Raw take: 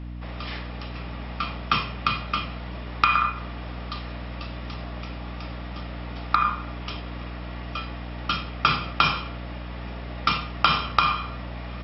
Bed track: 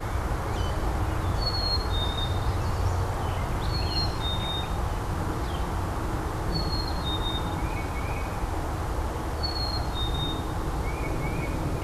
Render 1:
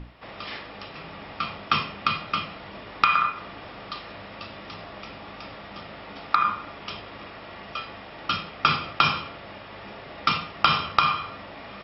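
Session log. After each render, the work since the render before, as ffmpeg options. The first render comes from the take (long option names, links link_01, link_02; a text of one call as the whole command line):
ffmpeg -i in.wav -af "bandreject=frequency=60:width_type=h:width=6,bandreject=frequency=120:width_type=h:width=6,bandreject=frequency=180:width_type=h:width=6,bandreject=frequency=240:width_type=h:width=6,bandreject=frequency=300:width_type=h:width=6" out.wav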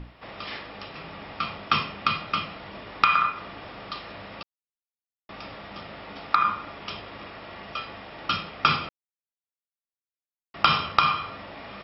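ffmpeg -i in.wav -filter_complex "[0:a]asplit=5[link_01][link_02][link_03][link_04][link_05];[link_01]atrim=end=4.43,asetpts=PTS-STARTPTS,afade=type=out:start_time=4.426:duration=0.004:curve=hsin[link_06];[link_02]atrim=start=4.43:end=5.29,asetpts=PTS-STARTPTS,volume=0[link_07];[link_03]atrim=start=5.29:end=8.89,asetpts=PTS-STARTPTS,afade=type=in:duration=0.004:curve=hsin,afade=type=out:start_time=3.596:duration=0.004:curve=hsin[link_08];[link_04]atrim=start=8.89:end=10.54,asetpts=PTS-STARTPTS,volume=0[link_09];[link_05]atrim=start=10.54,asetpts=PTS-STARTPTS,afade=type=in:duration=0.004:curve=hsin[link_10];[link_06][link_07][link_08][link_09][link_10]concat=n=5:v=0:a=1" out.wav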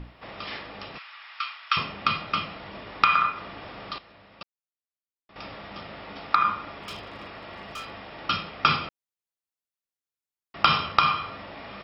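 ffmpeg -i in.wav -filter_complex "[0:a]asettb=1/sr,asplit=3[link_01][link_02][link_03];[link_01]atrim=end=0.984[link_04];[link_02]atrim=start=0.98:end=1.77,asetpts=PTS-STARTPTS,afade=type=in:duration=0.004:curve=qsin,afade=type=out:start_time=0.786:duration=0.004:curve=qsin,highpass=frequency=1200:width=0.5412,highpass=frequency=1200:width=1.3066[link_05];[link_03]atrim=start=1.766[link_06];[link_04][link_05]acrossfade=duration=0.004:curve1=hsin:curve2=qsin[link_07];[link_07][link_06]acrossfade=duration=0.004:curve1=qsin:curve2=hsin,asettb=1/sr,asplit=3[link_08][link_09][link_10];[link_08]atrim=end=3.984[link_11];[link_09]atrim=start=3.98:end=5.36,asetpts=PTS-STARTPTS,afade=type=in:duration=0.004:curve=qsin,afade=type=out:start_time=1.376:duration=0.004:curve=qsin,agate=range=-12dB:threshold=-39dB:ratio=16:release=100:detection=peak[link_12];[link_10]atrim=start=5.356[link_13];[link_11][link_12]acrossfade=duration=0.004:curve1=hsin:curve2=qsin[link_14];[link_14][link_13]acrossfade=duration=0.004:curve1=qsin:curve2=hsin,asplit=3[link_15][link_16][link_17];[link_15]afade=type=out:start_time=6.78:duration=0.02[link_18];[link_16]volume=33dB,asoftclip=hard,volume=-33dB,afade=type=in:start_time=6.78:duration=0.02,afade=type=out:start_time=7.89:duration=0.02[link_19];[link_17]afade=type=in:start_time=7.89:duration=0.02[link_20];[link_18][link_19][link_20]amix=inputs=3:normalize=0" out.wav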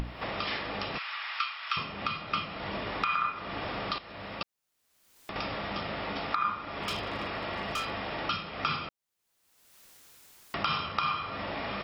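ffmpeg -i in.wav -af "acompressor=mode=upward:threshold=-27dB:ratio=2.5,alimiter=limit=-17dB:level=0:latency=1:release=369" out.wav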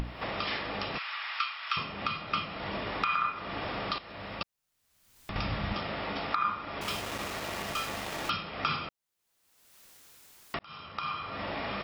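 ffmpeg -i in.wav -filter_complex "[0:a]asettb=1/sr,asplit=3[link_01][link_02][link_03];[link_01]atrim=end=4.154[link_04];[link_02]atrim=start=4.15:end=5.74,asetpts=PTS-STARTPTS,afade=type=in:duration=0.004:curve=qsin,afade=type=out:start_time=1.586:duration=0.004:curve=qsin,asubboost=boost=9:cutoff=180[link_05];[link_03]atrim=start=5.736[link_06];[link_04][link_05]acrossfade=duration=0.004:curve1=hsin:curve2=qsin[link_07];[link_07][link_06]acrossfade=duration=0.004:curve1=qsin:curve2=hsin,asettb=1/sr,asplit=3[link_08][link_09][link_10];[link_08]atrim=end=6.814[link_11];[link_09]atrim=start=6.81:end=8.3,asetpts=PTS-STARTPTS,afade=type=in:duration=0.004:curve=qsin,afade=type=out:start_time=1.486:duration=0.004:curve=qsin,aeval=exprs='val(0)*gte(abs(val(0)),0.0178)':channel_layout=same[link_12];[link_10]atrim=start=8.296[link_13];[link_11][link_12]acrossfade=duration=0.004:curve1=hsin:curve2=qsin[link_14];[link_14][link_13]acrossfade=duration=0.004:curve1=qsin:curve2=hsin,asplit=2[link_15][link_16];[link_15]atrim=end=10.59,asetpts=PTS-STARTPTS,afade=type=out:start_time=10.586:duration=0.004:curve=hsin[link_17];[link_16]atrim=start=10.59,asetpts=PTS-STARTPTS,afade=type=in:duration=0.86[link_18];[link_17][link_18]concat=n=2:v=0:a=1" out.wav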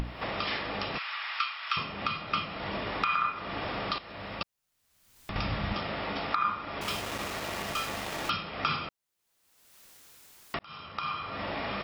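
ffmpeg -i in.wav -af "volume=1dB" out.wav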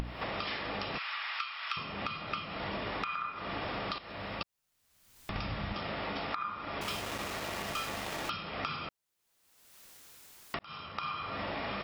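ffmpeg -i in.wav -af "acompressor=threshold=-33dB:ratio=6" out.wav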